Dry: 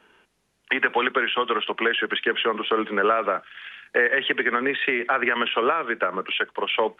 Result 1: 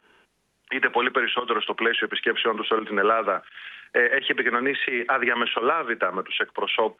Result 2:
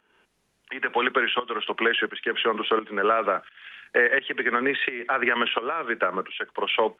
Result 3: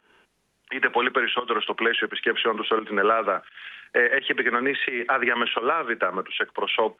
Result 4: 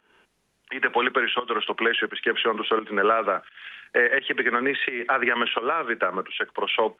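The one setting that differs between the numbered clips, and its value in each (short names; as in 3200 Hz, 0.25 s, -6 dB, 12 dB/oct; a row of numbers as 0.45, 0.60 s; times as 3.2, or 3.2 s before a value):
pump, release: 97, 519, 181, 266 ms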